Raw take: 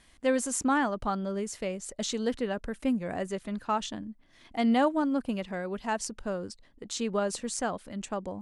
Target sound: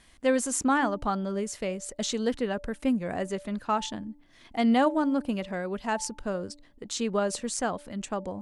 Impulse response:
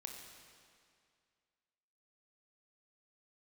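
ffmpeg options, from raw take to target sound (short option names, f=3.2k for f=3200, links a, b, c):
-af "bandreject=f=291.4:t=h:w=4,bandreject=f=582.8:t=h:w=4,bandreject=f=874.2:t=h:w=4,volume=2dB"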